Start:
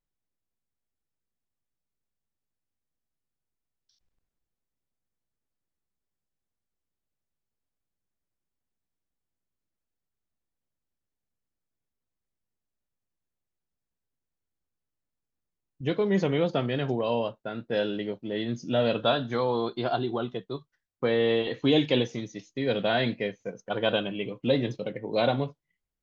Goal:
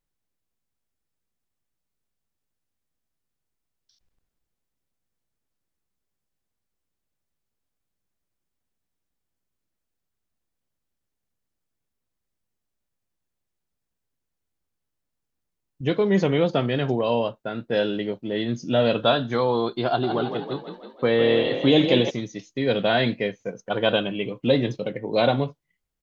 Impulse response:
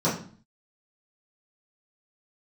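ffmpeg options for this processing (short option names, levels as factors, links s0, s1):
-filter_complex "[0:a]asplit=3[s0][s1][s2];[s0]afade=t=out:st=20.02:d=0.02[s3];[s1]asplit=8[s4][s5][s6][s7][s8][s9][s10][s11];[s5]adelay=161,afreqshift=37,volume=0.398[s12];[s6]adelay=322,afreqshift=74,volume=0.219[s13];[s7]adelay=483,afreqshift=111,volume=0.12[s14];[s8]adelay=644,afreqshift=148,volume=0.0661[s15];[s9]adelay=805,afreqshift=185,volume=0.0363[s16];[s10]adelay=966,afreqshift=222,volume=0.02[s17];[s11]adelay=1127,afreqshift=259,volume=0.011[s18];[s4][s12][s13][s14][s15][s16][s17][s18]amix=inputs=8:normalize=0,afade=t=in:st=20.02:d=0.02,afade=t=out:st=22.09:d=0.02[s19];[s2]afade=t=in:st=22.09:d=0.02[s20];[s3][s19][s20]amix=inputs=3:normalize=0,volume=1.68"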